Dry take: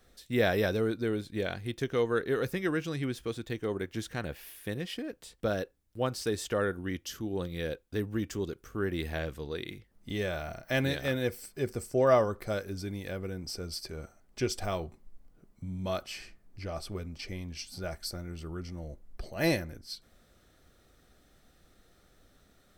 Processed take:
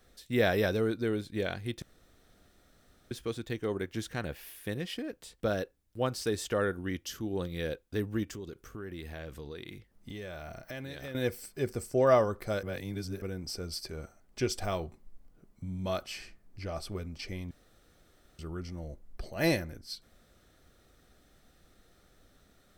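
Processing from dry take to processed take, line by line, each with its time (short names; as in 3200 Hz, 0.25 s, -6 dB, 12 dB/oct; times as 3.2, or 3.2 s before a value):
1.82–3.11 room tone
8.23–11.15 compressor 4:1, threshold -39 dBFS
12.63–13.22 reverse
17.51–18.39 room tone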